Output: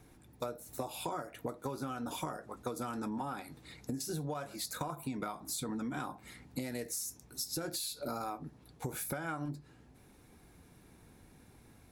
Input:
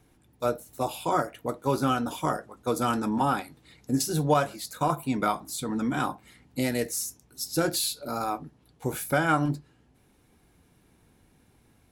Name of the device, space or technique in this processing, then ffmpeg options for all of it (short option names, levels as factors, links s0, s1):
serial compression, leveller first: -af "acompressor=threshold=0.0316:ratio=2.5,acompressor=threshold=0.0126:ratio=6,equalizer=f=3000:w=7.7:g=-6,volume=1.33"